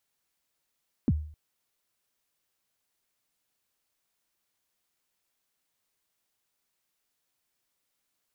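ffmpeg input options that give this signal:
-f lavfi -i "aevalsrc='0.133*pow(10,-3*t/0.51)*sin(2*PI*(310*0.041/log(76/310)*(exp(log(76/310)*min(t,0.041)/0.041)-1)+76*max(t-0.041,0)))':d=0.26:s=44100"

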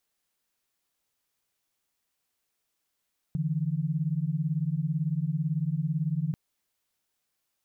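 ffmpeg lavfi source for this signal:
-f lavfi -i "aevalsrc='0.0376*(sin(2*PI*146.83*t)+sin(2*PI*164.81*t))':d=2.99:s=44100"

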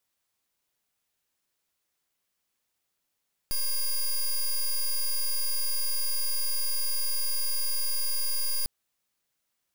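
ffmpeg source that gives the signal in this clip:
-f lavfi -i "aevalsrc='0.0473*(2*lt(mod(4840*t,1),0.1)-1)':d=5.15:s=44100"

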